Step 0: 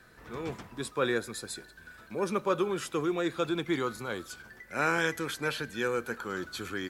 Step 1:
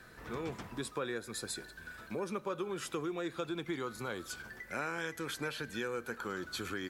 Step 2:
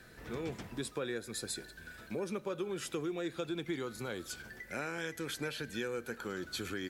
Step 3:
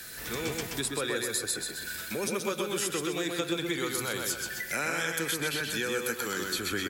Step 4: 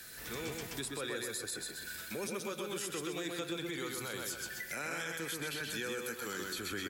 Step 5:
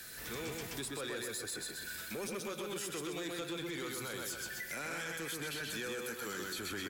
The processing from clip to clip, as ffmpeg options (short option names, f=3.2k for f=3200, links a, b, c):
-af "acompressor=threshold=-38dB:ratio=4,volume=2dB"
-af "equalizer=f=1.1k:t=o:w=0.82:g=-7.5,volume=1dB"
-filter_complex "[0:a]asplit=2[a][b];[b]adelay=127,lowpass=f=4.6k:p=1,volume=-3dB,asplit=2[c][d];[d]adelay=127,lowpass=f=4.6k:p=1,volume=0.44,asplit=2[e][f];[f]adelay=127,lowpass=f=4.6k:p=1,volume=0.44,asplit=2[g][h];[h]adelay=127,lowpass=f=4.6k:p=1,volume=0.44,asplit=2[i][j];[j]adelay=127,lowpass=f=4.6k:p=1,volume=0.44,asplit=2[k][l];[l]adelay=127,lowpass=f=4.6k:p=1,volume=0.44[m];[a][c][e][g][i][k][m]amix=inputs=7:normalize=0,acrossover=split=240|2200[n][o][p];[p]acompressor=threshold=-52dB:ratio=6[q];[n][o][q]amix=inputs=3:normalize=0,crystalizer=i=9:c=0,volume=2dB"
-af "alimiter=limit=-22.5dB:level=0:latency=1:release=21,volume=-6.5dB"
-af "asoftclip=type=tanh:threshold=-36dB,volume=1.5dB"